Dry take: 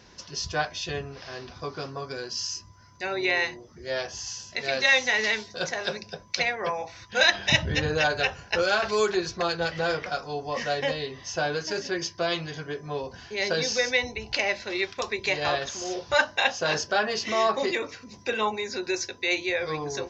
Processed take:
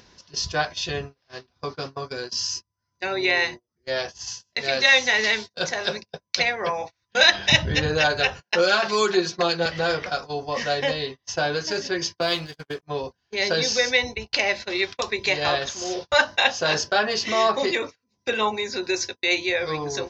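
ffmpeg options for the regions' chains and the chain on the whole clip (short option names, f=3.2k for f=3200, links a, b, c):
-filter_complex "[0:a]asettb=1/sr,asplit=3[a][b][c];[a]atrim=end=8.424[d];[b]atrim=start=8.42:end=9.66,asetpts=PTS-STARTPTS,afade=t=in:d=0.004:c=qsin,afade=t=out:st=1.236:d=0.004:c=qsin,highpass=f=150:w=0.5412,highpass=f=150:w=1.3066,aecho=1:1:5.6:0.41,atrim=end_sample=54684[e];[c]atrim=start=9.656[f];[d][e]acrossfade=d=0.004:c1=hsin:c2=qsin[g];[g][f]acrossfade=d=0.004:c1=qsin:c2=hsin,asettb=1/sr,asplit=3[h][i][j];[h]atrim=end=12.214[k];[i]atrim=start=12.21:end=12.83,asetpts=PTS-STARTPTS,afade=t=in:d=0.004:c=qsin,afade=t=out:st=0.616:d=0.004:c=qsin,agate=range=-33dB:threshold=-37dB:ratio=3:release=100:detection=peak,equalizer=f=4.6k:w=6.9:g=4.5,aeval=exprs='sgn(val(0))*max(abs(val(0))-0.00447,0)':c=same[l];[j]atrim=start=12.826[m];[k][l]acrossfade=d=0.004:c1=hsin:c2=qsin[n];[n][m]acrossfade=d=0.004:c1=qsin:c2=hsin,agate=range=-38dB:threshold=-35dB:ratio=16:detection=peak,equalizer=f=4k:t=o:w=0.81:g=3,acompressor=mode=upward:threshold=-32dB:ratio=2.5,volume=3dB"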